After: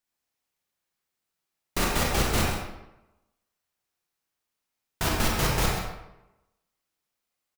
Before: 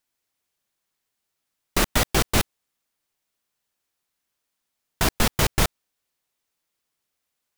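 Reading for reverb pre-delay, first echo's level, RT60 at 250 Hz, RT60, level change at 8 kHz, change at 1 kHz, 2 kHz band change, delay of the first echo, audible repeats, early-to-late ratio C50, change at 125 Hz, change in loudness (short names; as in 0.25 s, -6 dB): 28 ms, -7.5 dB, 0.90 s, 0.95 s, -4.5 dB, -1.5 dB, -3.0 dB, 0.132 s, 1, -0.5 dB, -1.5 dB, -3.5 dB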